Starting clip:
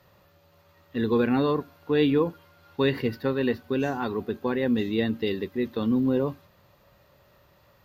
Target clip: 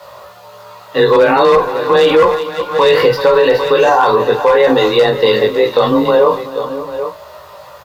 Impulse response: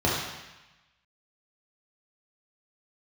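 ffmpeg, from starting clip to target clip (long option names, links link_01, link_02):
-filter_complex "[0:a]equalizer=frequency=125:width_type=o:width=1:gain=-5,equalizer=frequency=250:width_type=o:width=1:gain=-12,equalizer=frequency=500:width_type=o:width=1:gain=11,equalizer=frequency=1000:width_type=o:width=1:gain=12,equalizer=frequency=4000:width_type=o:width=1:gain=6,equalizer=frequency=8000:width_type=o:width=1:gain=7,acrusher=bits=10:mix=0:aa=0.000001,asplit=2[link_01][link_02];[link_02]adelay=20,volume=-5dB[link_03];[link_01][link_03]amix=inputs=2:normalize=0,flanger=delay=16.5:depth=2.9:speed=0.83,asoftclip=type=hard:threshold=-13.5dB,afreqshift=22,aecho=1:1:51|374|554|790:0.178|0.119|0.112|0.168,alimiter=level_in=18dB:limit=-1dB:release=50:level=0:latency=1,volume=-1dB" -ar 48000 -c:a libvorbis -b:a 128k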